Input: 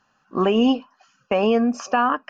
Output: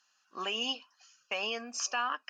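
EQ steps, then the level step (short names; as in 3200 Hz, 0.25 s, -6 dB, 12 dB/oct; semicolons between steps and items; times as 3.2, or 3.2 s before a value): band-pass 5300 Hz, Q 0.56; high shelf 3500 Hz +11.5 dB; -4.5 dB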